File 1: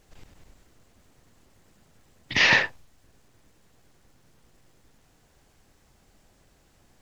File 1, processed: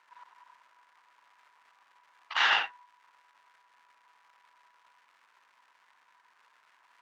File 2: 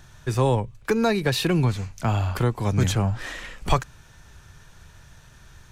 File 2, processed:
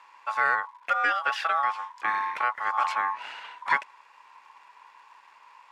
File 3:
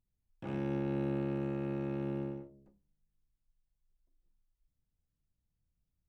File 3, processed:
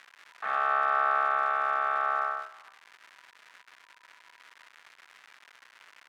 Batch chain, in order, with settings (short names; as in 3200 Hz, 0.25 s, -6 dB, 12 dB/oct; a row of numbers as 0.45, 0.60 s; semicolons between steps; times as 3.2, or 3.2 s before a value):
ring modulator 980 Hz; crackle 300/s -46 dBFS; band-pass 1700 Hz, Q 1.7; match loudness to -27 LUFS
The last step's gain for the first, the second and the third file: +2.5, +4.0, +16.5 dB